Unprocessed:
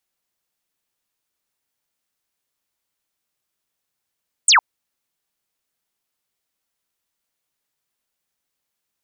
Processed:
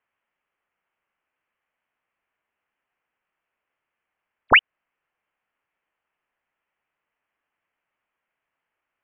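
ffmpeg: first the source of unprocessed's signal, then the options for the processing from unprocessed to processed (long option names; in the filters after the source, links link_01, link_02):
-f lavfi -i "aevalsrc='0.355*clip(t/0.002,0,1)*clip((0.11-t)/0.002,0,1)*sin(2*PI*9200*0.11/log(820/9200)*(exp(log(820/9200)*t/0.11)-1))':duration=0.11:sample_rate=44100"
-filter_complex "[0:a]highpass=1400,asplit=2[link_01][link_02];[link_02]alimiter=limit=-19dB:level=0:latency=1:release=203,volume=2dB[link_03];[link_01][link_03]amix=inputs=2:normalize=0,lowpass=frequency=3300:width_type=q:width=0.5098,lowpass=frequency=3300:width_type=q:width=0.6013,lowpass=frequency=3300:width_type=q:width=0.9,lowpass=frequency=3300:width_type=q:width=2.563,afreqshift=-3900"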